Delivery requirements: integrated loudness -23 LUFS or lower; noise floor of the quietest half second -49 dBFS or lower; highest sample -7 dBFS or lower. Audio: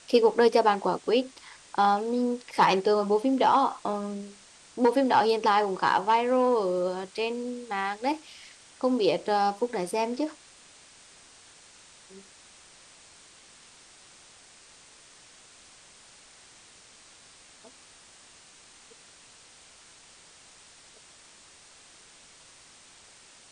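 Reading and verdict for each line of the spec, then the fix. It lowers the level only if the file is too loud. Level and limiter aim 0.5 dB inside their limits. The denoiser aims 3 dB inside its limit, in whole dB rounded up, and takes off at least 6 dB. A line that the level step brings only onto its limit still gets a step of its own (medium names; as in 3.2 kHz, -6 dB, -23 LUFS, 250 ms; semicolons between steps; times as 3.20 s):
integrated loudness -25.5 LUFS: pass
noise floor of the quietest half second -54 dBFS: pass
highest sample -9.0 dBFS: pass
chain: none needed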